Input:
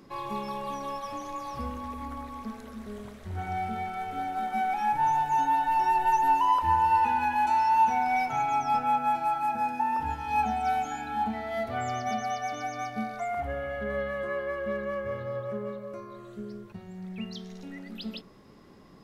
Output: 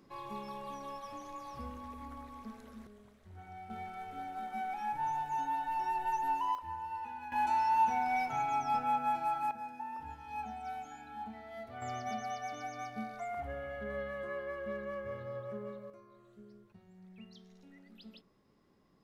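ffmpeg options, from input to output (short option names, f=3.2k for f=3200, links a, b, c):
-af "asetnsamples=n=441:p=0,asendcmd='2.87 volume volume -17dB;3.7 volume volume -10dB;6.55 volume volume -18dB;7.32 volume volume -6dB;9.51 volume volume -14.5dB;11.82 volume volume -8dB;15.9 volume volume -16dB',volume=-9dB"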